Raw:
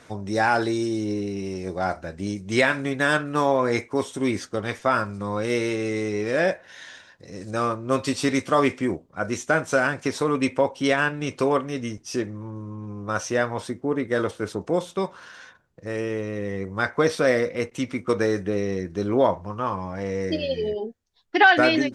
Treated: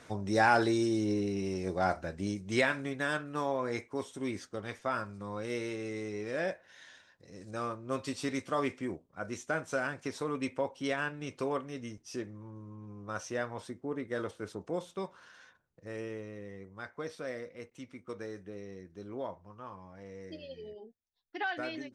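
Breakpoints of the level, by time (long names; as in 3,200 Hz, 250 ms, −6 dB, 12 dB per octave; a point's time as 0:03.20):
0:02.02 −4 dB
0:03.14 −12 dB
0:16.04 −12 dB
0:16.78 −19.5 dB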